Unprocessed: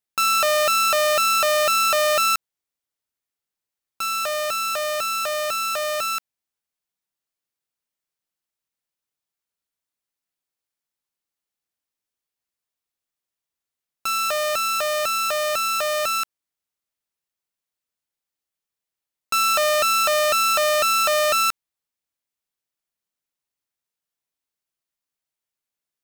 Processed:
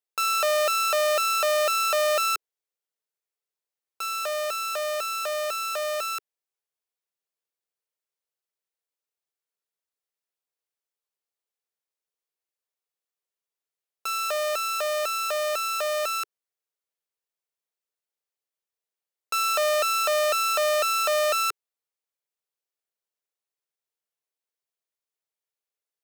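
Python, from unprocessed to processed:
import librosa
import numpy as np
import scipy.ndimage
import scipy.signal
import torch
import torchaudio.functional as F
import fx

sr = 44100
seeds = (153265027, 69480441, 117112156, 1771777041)

y = scipy.signal.sosfilt(scipy.signal.butter(2, 120.0, 'highpass', fs=sr, output='sos'), x)
y = fx.low_shelf_res(y, sr, hz=330.0, db=-8.0, q=3.0)
y = F.gain(torch.from_numpy(y), -5.5).numpy()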